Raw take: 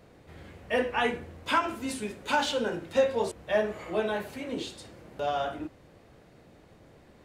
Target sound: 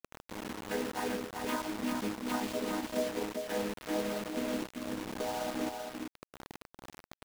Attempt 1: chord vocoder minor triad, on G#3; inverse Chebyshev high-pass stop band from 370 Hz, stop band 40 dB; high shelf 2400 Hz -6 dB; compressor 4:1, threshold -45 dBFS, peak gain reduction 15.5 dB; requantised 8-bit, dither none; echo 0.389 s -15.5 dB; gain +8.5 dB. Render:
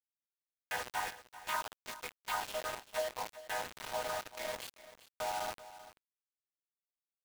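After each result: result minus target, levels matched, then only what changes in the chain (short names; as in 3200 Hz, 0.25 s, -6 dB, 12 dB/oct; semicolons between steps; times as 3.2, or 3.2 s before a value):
echo-to-direct -11 dB; 500 Hz band -3.0 dB
change: echo 0.389 s -4.5 dB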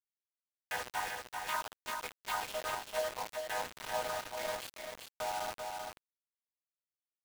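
500 Hz band -2.0 dB
remove: inverse Chebyshev high-pass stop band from 370 Hz, stop band 40 dB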